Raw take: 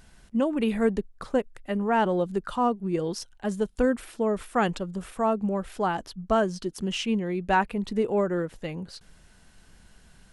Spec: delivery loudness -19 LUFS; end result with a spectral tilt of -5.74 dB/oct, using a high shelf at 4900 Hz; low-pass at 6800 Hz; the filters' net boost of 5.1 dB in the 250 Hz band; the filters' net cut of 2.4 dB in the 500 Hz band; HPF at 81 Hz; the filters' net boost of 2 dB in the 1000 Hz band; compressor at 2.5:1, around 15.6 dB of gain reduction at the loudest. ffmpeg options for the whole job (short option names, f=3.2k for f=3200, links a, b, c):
-af "highpass=81,lowpass=6.8k,equalizer=f=250:t=o:g=7.5,equalizer=f=500:t=o:g=-6.5,equalizer=f=1k:t=o:g=4.5,highshelf=f=4.9k:g=-6.5,acompressor=threshold=-41dB:ratio=2.5,volume=20dB"